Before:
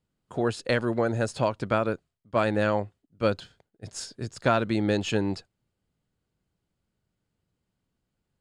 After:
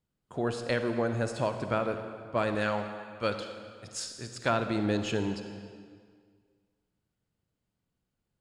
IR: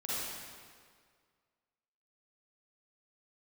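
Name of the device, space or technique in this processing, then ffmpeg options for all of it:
saturated reverb return: -filter_complex "[0:a]asplit=2[s0][s1];[1:a]atrim=start_sample=2205[s2];[s1][s2]afir=irnorm=-1:irlink=0,asoftclip=type=tanh:threshold=0.15,volume=0.398[s3];[s0][s3]amix=inputs=2:normalize=0,asettb=1/sr,asplit=3[s4][s5][s6];[s4]atrim=end=2.554[s7];[s5]atrim=start=2.55:end=4.5,asetpts=PTS-STARTPTS,afade=t=in:d=0.004:c=qsin,afade=t=out:st=1.946:d=0.004:c=qsin,tiltshelf=f=790:g=-4.5[s8];[s6]atrim=start=4.496[s9];[s7][s8]acrossfade=d=0.004:c1=hsin:c2=qsin[s10];[s10][s9]acrossfade=d=0.004:c1=qsin:c2=hsin,volume=0.501"

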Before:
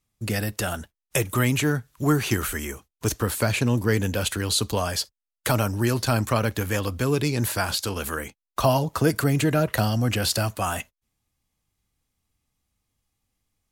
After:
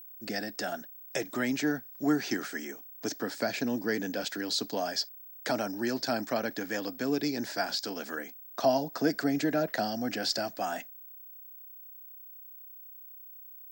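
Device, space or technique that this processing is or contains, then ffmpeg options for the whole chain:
old television with a line whistle: -af "highpass=f=190:w=0.5412,highpass=f=190:w=1.3066,equalizer=f=280:t=q:w=4:g=7,equalizer=f=700:t=q:w=4:g=8,equalizer=f=1100:t=q:w=4:g=-8,equalizer=f=1700:t=q:w=4:g=6,equalizer=f=2800:t=q:w=4:g=-6,equalizer=f=5100:t=q:w=4:g=9,lowpass=f=7000:w=0.5412,lowpass=f=7000:w=1.3066,aeval=exprs='val(0)+0.0141*sin(2*PI*15734*n/s)':c=same,volume=0.376"

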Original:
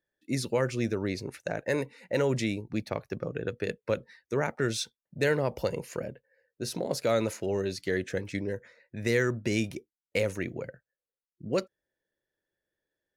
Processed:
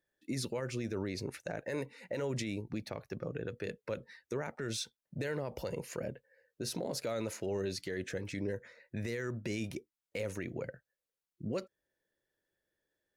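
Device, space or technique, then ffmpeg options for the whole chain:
stacked limiters: -af "alimiter=limit=0.133:level=0:latency=1:release=460,alimiter=level_in=1.06:limit=0.0631:level=0:latency=1:release=55,volume=0.944,alimiter=level_in=1.58:limit=0.0631:level=0:latency=1:release=223,volume=0.631,volume=1.12"

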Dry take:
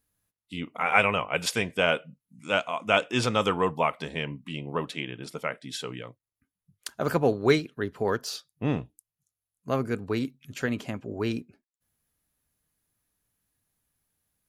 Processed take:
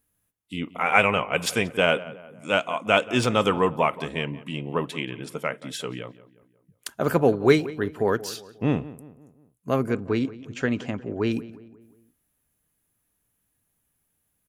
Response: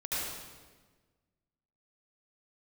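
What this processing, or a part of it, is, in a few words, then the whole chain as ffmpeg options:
exciter from parts: -filter_complex "[0:a]asettb=1/sr,asplit=3[s0][s1][s2];[s0]atrim=end=9.914[s3];[s1]atrim=start=9.91:end=11.32,asetpts=PTS-STARTPTS,afade=t=in:d=0.004:c=qsin,afade=t=out:st=1.406:d=0.004:c=qsin,lowpass=f=6800:w=0.5412,lowpass=f=6800:w=1.3066[s4];[s2]atrim=start=11.316[s5];[s3][s4]acrossfade=d=0.004:c1=hsin:c2=qsin[s6];[s6][s5]acrossfade=d=0.004:c1=qsin:c2=hsin,asplit=2[s7][s8];[s8]highpass=3500,asoftclip=type=tanh:threshold=0.0251,highpass=f=3000:w=0.5412,highpass=f=3000:w=1.3066,volume=0.501[s9];[s7][s9]amix=inputs=2:normalize=0,equalizer=f=300:w=0.61:g=2.5,asplit=2[s10][s11];[s11]adelay=179,lowpass=f=2000:p=1,volume=0.141,asplit=2[s12][s13];[s13]adelay=179,lowpass=f=2000:p=1,volume=0.49,asplit=2[s14][s15];[s15]adelay=179,lowpass=f=2000:p=1,volume=0.49,asplit=2[s16][s17];[s17]adelay=179,lowpass=f=2000:p=1,volume=0.49[s18];[s10][s12][s14][s16][s18]amix=inputs=5:normalize=0,volume=1.26"

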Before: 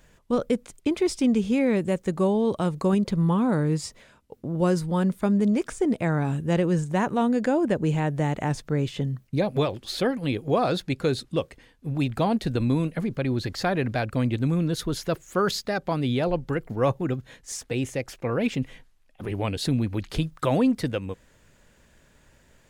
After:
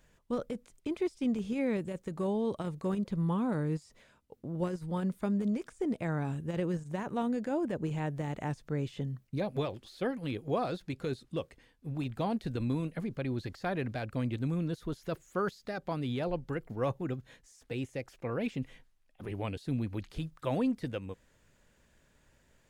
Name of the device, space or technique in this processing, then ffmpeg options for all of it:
de-esser from a sidechain: -filter_complex "[0:a]asplit=2[s0][s1];[s1]highpass=f=5800:w=0.5412,highpass=f=5800:w=1.3066,apad=whole_len=1000821[s2];[s0][s2]sidechaincompress=threshold=0.00355:ratio=10:attack=0.68:release=26,volume=0.376"

